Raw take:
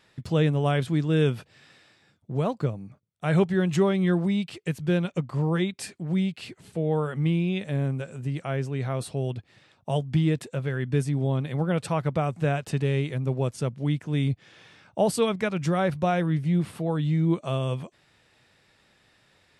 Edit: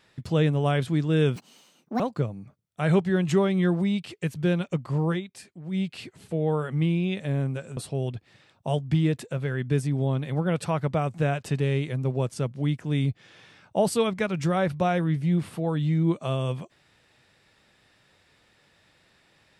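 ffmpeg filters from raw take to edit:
-filter_complex "[0:a]asplit=6[a][b][c][d][e][f];[a]atrim=end=1.364[g];[b]atrim=start=1.36:end=2.44,asetpts=PTS-STARTPTS,asetrate=74529,aresample=44100,atrim=end_sample=28182,asetpts=PTS-STARTPTS[h];[c]atrim=start=2.436:end=5.65,asetpts=PTS-STARTPTS,afade=t=out:st=3.084:d=0.13:c=qsin:silence=0.354813[i];[d]atrim=start=5.65:end=6.15,asetpts=PTS-STARTPTS,volume=-9dB[j];[e]atrim=start=6.15:end=8.212,asetpts=PTS-STARTPTS,afade=t=in:d=0.13:c=qsin:silence=0.354813[k];[f]atrim=start=8.988[l];[g][h]acrossfade=d=0.004:c1=hsin:c2=hsin[m];[i][j][k]concat=n=3:v=0:a=1[n];[m][n]acrossfade=d=0.004:c1=hsin:c2=hsin[o];[o][l]acrossfade=d=0.004:c1=hsin:c2=hsin"

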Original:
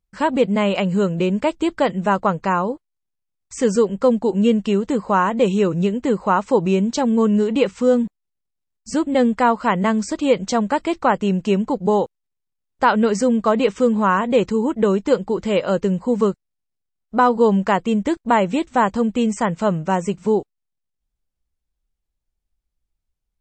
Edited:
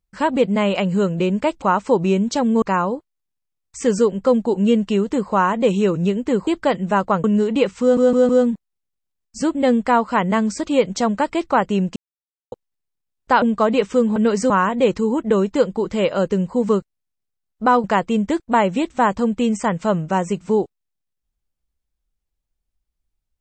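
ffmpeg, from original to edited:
-filter_complex "[0:a]asplit=14[a][b][c][d][e][f][g][h][i][j][k][l][m][n];[a]atrim=end=1.622[o];[b]atrim=start=6.238:end=7.242[p];[c]atrim=start=2.388:end=6.242[q];[d]atrim=start=1.618:end=2.392[r];[e]atrim=start=7.238:end=7.972[s];[f]atrim=start=7.808:end=7.972[t];[g]atrim=start=7.808:end=7.972[u];[h]atrim=start=7.808:end=11.48,asetpts=PTS-STARTPTS,afade=t=out:st=3.668:d=0.004:c=hsin[v];[i]atrim=start=11.48:end=12.04,asetpts=PTS-STARTPTS,volume=0[w];[j]atrim=start=12.04:end=12.942,asetpts=PTS-STARTPTS,afade=t=in:d=0.004:c=hsin[x];[k]atrim=start=13.278:end=14.022[y];[l]atrim=start=12.938:end=13.282[z];[m]atrim=start=14.018:end=17.362[aa];[n]atrim=start=17.608[ab];[o][p]acrossfade=d=0.004:c1=hsin:c2=hsin[ac];[ac][q]acrossfade=d=0.004:c1=hsin:c2=hsin[ad];[ad][r]acrossfade=d=0.004:c1=hsin:c2=hsin[ae];[ae][s]acrossfade=d=0.004:c1=hsin:c2=hsin[af];[af][t]acrossfade=d=0.004:c1=hsin:c2=hsin[ag];[ag][u]acrossfade=d=0.004:c1=hsin:c2=hsin[ah];[v][w][x]concat=n=3:v=0:a=1[ai];[ah][ai]acrossfade=d=0.004:c1=hsin:c2=hsin[aj];[aj][y]acrossfade=d=0.004:c1=hsin:c2=hsin[ak];[ak][z]acrossfade=d=0.004:c1=hsin:c2=hsin[al];[al][aa]acrossfade=d=0.004:c1=hsin:c2=hsin[am];[am][ab]acrossfade=d=0.004:c1=hsin:c2=hsin"

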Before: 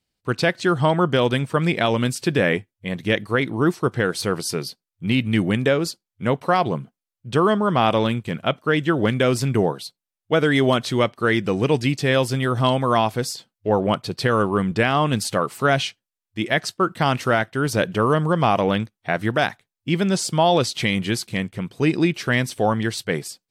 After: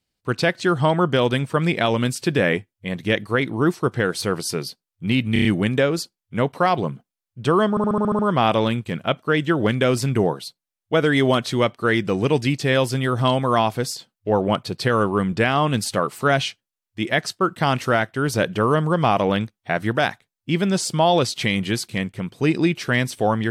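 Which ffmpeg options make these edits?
-filter_complex "[0:a]asplit=12[a][b][c][d][e][f][g][h][i][j][k][l];[a]atrim=end=5.362[m];[b]atrim=start=5.328:end=5.362[n];[c]atrim=start=5.328:end=5.362[o];[d]atrim=start=5.328:end=5.362[p];[e]atrim=start=5.328:end=7.652[q];[f]atrim=start=7.578:end=7.652[r];[g]atrim=start=7.578:end=7.652[s];[h]atrim=start=7.578:end=7.652[t];[i]atrim=start=7.578:end=7.652[u];[j]atrim=start=7.578:end=7.652[v];[k]atrim=start=7.578:end=7.652[w];[l]atrim=start=7.578[x];[m][n]acrossfade=d=0.004:c1=hsin:c2=hsin[y];[y][o]acrossfade=d=0.004:c1=hsin:c2=hsin[z];[z][p]acrossfade=d=0.004:c1=hsin:c2=hsin[aa];[aa][q]acrossfade=d=0.004:c1=hsin:c2=hsin[ab];[ab][r]acrossfade=d=0.004:c1=hsin:c2=hsin[ac];[ac][s]acrossfade=d=0.004:c1=hsin:c2=hsin[ad];[ad][t]acrossfade=d=0.004:c1=hsin:c2=hsin[ae];[ae][u]acrossfade=d=0.004:c1=hsin:c2=hsin[af];[af][v]acrossfade=d=0.004:c1=hsin:c2=hsin[ag];[ag][w]acrossfade=d=0.004:c1=hsin:c2=hsin[ah];[ah][x]acrossfade=d=0.004:c1=hsin:c2=hsin"

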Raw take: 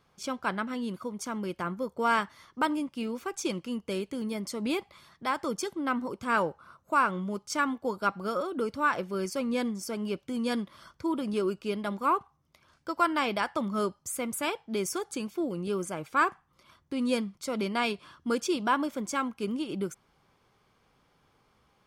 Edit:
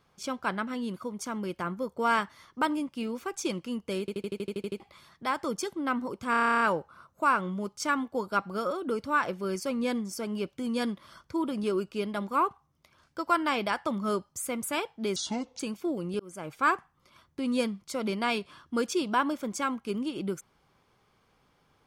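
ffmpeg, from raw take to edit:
-filter_complex "[0:a]asplit=24[a][b][c][d][e][f][g][h][i][j][k][l][m][n][o][p][q][r][s][t][u][v][w][x];[a]atrim=end=4.082[y];[b]atrim=start=3.998:end=4.082[z];[c]atrim=start=3.998:end=4.082[aa];[d]atrim=start=3.998:end=4.082[ab];[e]atrim=start=3.998:end=4.082[ac];[f]atrim=start=3.998:end=4.082[ad];[g]atrim=start=3.998:end=4.082[ae];[h]atrim=start=3.998:end=4.082[af];[i]atrim=start=3.998:end=4.082[ag];[j]atrim=start=3.998:end=4.082[ah];[k]atrim=start=4.798:end=6.342[ai];[l]atrim=start=6.308:end=6.342[aj];[m]atrim=start=6.308:end=6.342[ak];[n]atrim=start=6.308:end=6.342[al];[o]atrim=start=6.308:end=6.342[am];[p]atrim=start=6.308:end=6.342[an];[q]atrim=start=6.308:end=6.342[ao];[r]atrim=start=6.308:end=6.342[ap];[s]atrim=start=6.308:end=6.342[aq];[t]atrim=start=6.308:end=6.342[ar];[u]atrim=start=6.308:end=14.864[as];[v]atrim=start=14.86:end=15.13,asetpts=PTS-STARTPTS,asetrate=27342,aresample=44100[at];[w]atrim=start=15.126:end=15.73,asetpts=PTS-STARTPTS,afade=t=out:st=0.6:d=0.004:c=hsin[au];[x]atrim=start=15.73,asetpts=PTS-STARTPTS,afade=t=in:d=0.33[av];[y][z]acrossfade=d=0.004:c1=hsin:c2=hsin[aw];[aw][aa]acrossfade=d=0.004:c1=hsin:c2=hsin[ax];[ax][ab]acrossfade=d=0.004:c1=hsin:c2=hsin[ay];[ay][ac]acrossfade=d=0.004:c1=hsin:c2=hsin[az];[az][ad]acrossfade=d=0.004:c1=hsin:c2=hsin[ba];[ba][ae]acrossfade=d=0.004:c1=hsin:c2=hsin[bb];[bb][af]acrossfade=d=0.004:c1=hsin:c2=hsin[bc];[bc][ag]acrossfade=d=0.004:c1=hsin:c2=hsin[bd];[bd][ah]acrossfade=d=0.004:c1=hsin:c2=hsin[be];[be][ai]acrossfade=d=0.004:c1=hsin:c2=hsin[bf];[bf][aj]acrossfade=d=0.004:c1=hsin:c2=hsin[bg];[bg][ak]acrossfade=d=0.004:c1=hsin:c2=hsin[bh];[bh][al]acrossfade=d=0.004:c1=hsin:c2=hsin[bi];[bi][am]acrossfade=d=0.004:c1=hsin:c2=hsin[bj];[bj][an]acrossfade=d=0.004:c1=hsin:c2=hsin[bk];[bk][ao]acrossfade=d=0.004:c1=hsin:c2=hsin[bl];[bl][ap]acrossfade=d=0.004:c1=hsin:c2=hsin[bm];[bm][aq]acrossfade=d=0.004:c1=hsin:c2=hsin[bn];[bn][ar]acrossfade=d=0.004:c1=hsin:c2=hsin[bo];[bo][as]acrossfade=d=0.004:c1=hsin:c2=hsin[bp];[bp][at]acrossfade=d=0.004:c1=hsin:c2=hsin[bq];[au][av]concat=n=2:v=0:a=1[br];[bq][br]acrossfade=d=0.004:c1=hsin:c2=hsin"

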